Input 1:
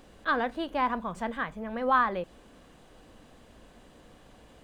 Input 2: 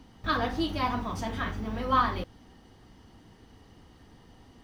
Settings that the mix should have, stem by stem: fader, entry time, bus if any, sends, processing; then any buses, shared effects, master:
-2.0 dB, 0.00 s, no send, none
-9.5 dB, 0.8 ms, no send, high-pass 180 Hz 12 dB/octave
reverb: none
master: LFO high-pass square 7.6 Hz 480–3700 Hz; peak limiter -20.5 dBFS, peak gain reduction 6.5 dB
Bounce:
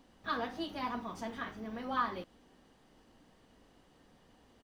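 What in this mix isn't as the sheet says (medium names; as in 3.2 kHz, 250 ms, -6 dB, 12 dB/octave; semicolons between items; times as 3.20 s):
stem 1 -2.0 dB -> -12.5 dB; master: missing LFO high-pass square 7.6 Hz 480–3700 Hz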